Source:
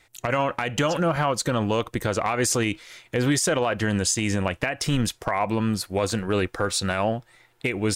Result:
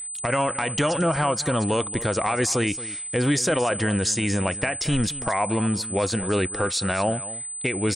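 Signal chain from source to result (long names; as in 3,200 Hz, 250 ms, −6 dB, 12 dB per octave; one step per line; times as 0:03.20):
parametric band 14,000 Hz −13 dB 0.38 octaves
on a send: single-tap delay 225 ms −16 dB
on the sum: steady tone 8,100 Hz −31 dBFS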